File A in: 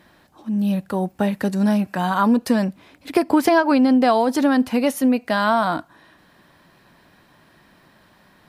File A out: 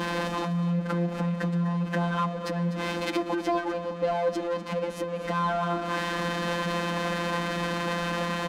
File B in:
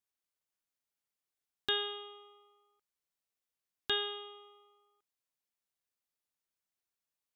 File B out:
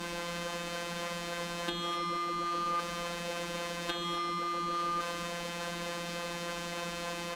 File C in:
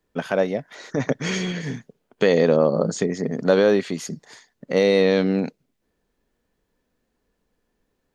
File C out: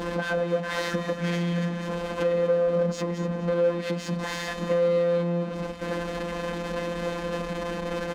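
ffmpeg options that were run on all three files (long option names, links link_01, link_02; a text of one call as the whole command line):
ffmpeg -i in.wav -filter_complex "[0:a]aeval=exprs='val(0)+0.5*0.0596*sgn(val(0))':channel_layout=same,asplit=2[link_01][link_02];[link_02]acrusher=samples=40:mix=1:aa=0.000001:lfo=1:lforange=64:lforate=3.5,volume=-10dB[link_03];[link_01][link_03]amix=inputs=2:normalize=0,asoftclip=type=tanh:threshold=-13dB,adynamicequalizer=threshold=0.00447:dfrequency=2100:dqfactor=6.4:tfrequency=2100:tqfactor=6.4:attack=5:release=100:ratio=0.375:range=1.5:mode=cutabove:tftype=bell,acompressor=threshold=-27dB:ratio=6,highshelf=frequency=3000:gain=6.5,afftfilt=real='hypot(re,im)*cos(PI*b)':imag='0':win_size=1024:overlap=0.75,adynamicsmooth=sensitivity=0.5:basefreq=1900,highpass=41,aecho=1:1:3.9:0.85,aecho=1:1:248:0.224,volume=4dB" out.wav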